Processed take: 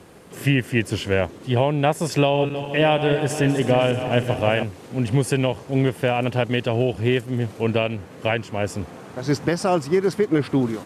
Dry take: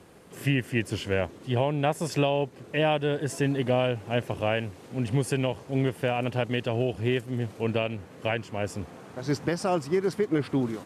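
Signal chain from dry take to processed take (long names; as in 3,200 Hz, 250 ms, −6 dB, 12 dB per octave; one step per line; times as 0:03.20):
0:02.18–0:04.63: feedback delay that plays each chunk backwards 158 ms, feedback 72%, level −10 dB
level +6 dB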